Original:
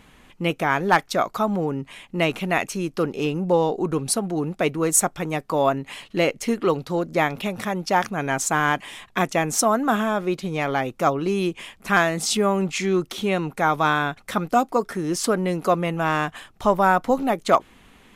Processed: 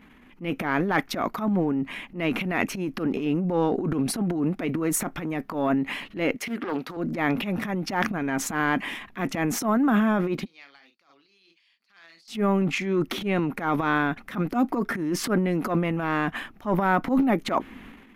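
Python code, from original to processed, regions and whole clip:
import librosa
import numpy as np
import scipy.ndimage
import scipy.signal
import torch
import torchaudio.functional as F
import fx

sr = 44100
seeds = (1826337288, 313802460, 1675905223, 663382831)

y = fx.chain(x, sr, fx.highpass(hz=620.0, slope=6),
    fx.doppler_dist(depth_ms=0.32), at=(6.36, 6.97))
y = fx.chain(y, sr, fx.bandpass_q(hz=4500.0, q=12.0),
    fx.doubler(ms=42.0, db=-8), at=(10.45, 12.28))
y = fx.graphic_eq_10(y, sr, hz=(125, 250, 500, 2000, 4000, 8000), db=(-4, 11, -3, 5, -4, -12))
y = fx.transient(y, sr, attack_db=-12, sustain_db=9)
y = F.gain(torch.from_numpy(y), -4.5).numpy()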